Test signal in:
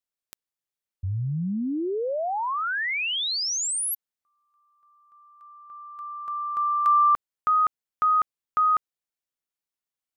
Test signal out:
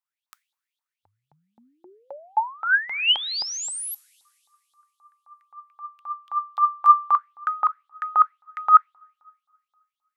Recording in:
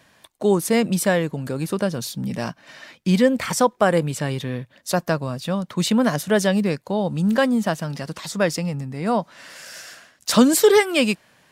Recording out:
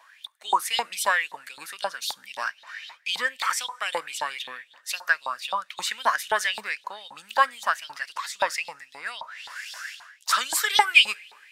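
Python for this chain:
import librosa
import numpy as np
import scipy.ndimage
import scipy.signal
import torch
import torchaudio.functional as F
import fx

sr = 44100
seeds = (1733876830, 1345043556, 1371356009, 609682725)

y = fx.rev_double_slope(x, sr, seeds[0], early_s=0.3, late_s=2.5, knee_db=-18, drr_db=18.0)
y = fx.filter_lfo_highpass(y, sr, shape='saw_up', hz=3.8, low_hz=830.0, high_hz=3900.0, q=7.6)
y = F.gain(torch.from_numpy(y), -4.5).numpy()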